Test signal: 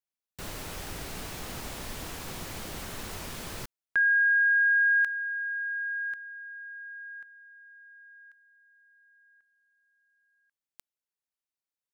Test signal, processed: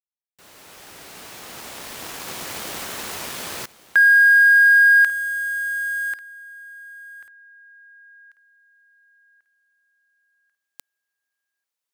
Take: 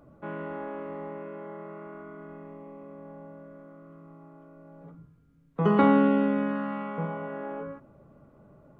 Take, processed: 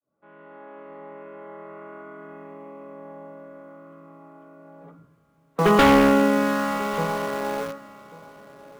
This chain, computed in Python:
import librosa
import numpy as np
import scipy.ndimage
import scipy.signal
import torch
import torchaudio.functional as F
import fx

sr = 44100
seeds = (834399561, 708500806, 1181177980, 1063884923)

p1 = fx.fade_in_head(x, sr, length_s=2.61)
p2 = fx.highpass(p1, sr, hz=450.0, slope=6)
p3 = fx.quant_dither(p2, sr, seeds[0], bits=6, dither='none')
p4 = p2 + (p3 * librosa.db_to_amplitude(-7.0))
p5 = 10.0 ** (-17.0 / 20.0) * (np.abs((p4 / 10.0 ** (-17.0 / 20.0) + 3.0) % 4.0 - 2.0) - 1.0)
p6 = p5 + 10.0 ** (-19.5 / 20.0) * np.pad(p5, (int(1142 * sr / 1000.0), 0))[:len(p5)]
y = p6 * librosa.db_to_amplitude(7.5)